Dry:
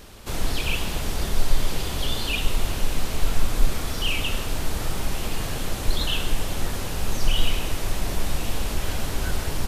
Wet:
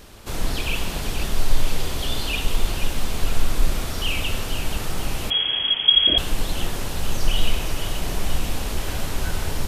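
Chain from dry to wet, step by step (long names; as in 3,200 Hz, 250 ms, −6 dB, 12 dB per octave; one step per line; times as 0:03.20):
echo with a time of its own for lows and highs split 2,100 Hz, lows 87 ms, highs 481 ms, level −8 dB
0:05.30–0:06.18: voice inversion scrambler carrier 3,300 Hz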